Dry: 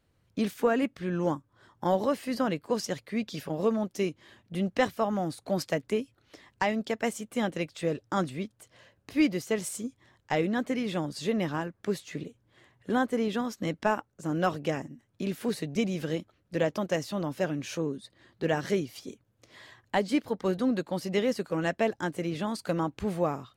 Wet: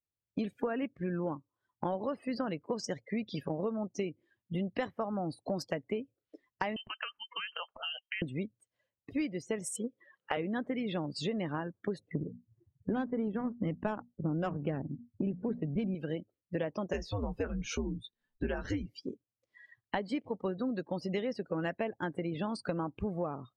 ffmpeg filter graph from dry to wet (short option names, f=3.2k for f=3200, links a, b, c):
-filter_complex "[0:a]asettb=1/sr,asplit=3[a][b][c];[a]atrim=end=6.764[d];[b]atrim=start=6.76:end=8.22,asetpts=PTS-STARTPTS,afade=t=in:d=0.004:c=qsin,afade=t=out:st=1.456:d=0.004:c=qsin,tiltshelf=f=730:g=-9.5,acompressor=threshold=-35dB:ratio=12:attack=3.2:release=140:knee=1:detection=peak,lowpass=f=2.8k:t=q:w=0.5098,lowpass=f=2.8k:t=q:w=0.6013,lowpass=f=2.8k:t=q:w=0.9,lowpass=f=2.8k:t=q:w=2.563,afreqshift=-3300[e];[c]atrim=start=8.216[f];[d][e]acrossfade=d=0.004:c1=hsin:c2=qsin[g];[g][f]acrossfade=d=0.004:c1=qsin:c2=hsin,asettb=1/sr,asplit=3[h][i][j];[h]atrim=end=9.764[k];[i]atrim=start=9.76:end=10.37,asetpts=PTS-STARTPTS,afade=t=in:d=0.004:c=qsin,afade=t=out:st=0.606:d=0.004:c=qsin,highpass=f=180:w=0.5412,highpass=f=180:w=1.3066,equalizer=f=280:t=q:w=4:g=-8,equalizer=f=510:t=q:w=4:g=7,equalizer=f=1.3k:t=q:w=4:g=8,equalizer=f=2.9k:t=q:w=4:g=6,lowpass=f=4.6k:w=0.5412,lowpass=f=4.6k:w=1.3066,acompressor=mode=upward:threshold=-41dB:ratio=2.5:attack=3.2:release=140:knee=2.83:detection=peak[l];[j]atrim=start=10.366[m];[k][l]acrossfade=d=0.004:c1=hsin:c2=qsin[n];[n][m]acrossfade=d=0.004:c1=qsin:c2=hsin,asettb=1/sr,asplit=3[o][p][q];[o]atrim=end=11.994[r];[p]atrim=start=11.99:end=15.95,asetpts=PTS-STARTPTS,afade=t=in:d=0.004:c=qsin,afade=t=out:st=3.956:d=0.004:c=qsin,lowshelf=f=290:g=11.5,bandreject=f=60:t=h:w=6,bandreject=f=120:t=h:w=6,bandreject=f=180:t=h:w=6,bandreject=f=240:t=h:w=6,adynamicsmooth=sensitivity=6.5:basefreq=730[s];[q]atrim=start=15.946[t];[r][s]acrossfade=d=0.004:c1=hsin:c2=qsin[u];[u][t]acrossfade=d=0.004:c1=qsin:c2=hsin,asettb=1/sr,asplit=3[v][w][x];[v]atrim=end=16.934[y];[w]atrim=start=16.93:end=18.87,asetpts=PTS-STARTPTS,afade=t=in:d=0.004:c=qsin,afade=t=out:st=1.936:d=0.004:c=qsin,afreqshift=-100,highshelf=f=12k:g=4.5,asplit=2[z][aa];[aa]adelay=17,volume=-7.5dB[ab];[z][ab]amix=inputs=2:normalize=0,atrim=end_sample=85554[ac];[x]atrim=start=18.866[ad];[y][ac]acrossfade=d=0.004:c1=hsin:c2=qsin[ae];[ae][ad]acrossfade=d=0.004:c1=qsin:c2=hsin,afftdn=nr=33:nf=-41,acompressor=threshold=-35dB:ratio=6,volume=3.5dB"